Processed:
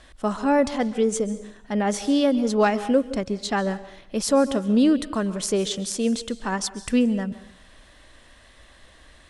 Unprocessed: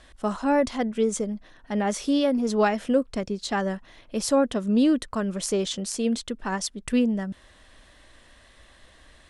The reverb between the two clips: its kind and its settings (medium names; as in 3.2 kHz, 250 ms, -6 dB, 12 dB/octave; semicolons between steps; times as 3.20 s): plate-style reverb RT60 0.69 s, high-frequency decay 1×, pre-delay 120 ms, DRR 15 dB; trim +2 dB